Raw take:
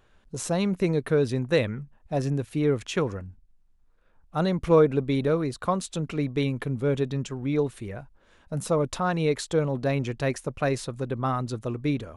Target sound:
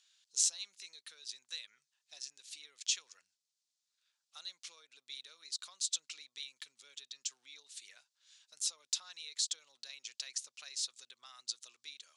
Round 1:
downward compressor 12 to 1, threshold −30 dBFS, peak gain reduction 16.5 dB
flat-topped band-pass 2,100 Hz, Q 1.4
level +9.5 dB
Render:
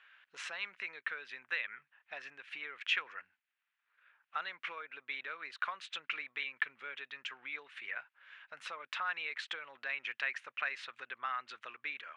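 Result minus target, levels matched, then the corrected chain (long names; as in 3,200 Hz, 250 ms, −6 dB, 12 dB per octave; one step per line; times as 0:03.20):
2,000 Hz band +18.5 dB
downward compressor 12 to 1, threshold −30 dBFS, peak gain reduction 16.5 dB
flat-topped band-pass 5,600 Hz, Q 1.4
level +9.5 dB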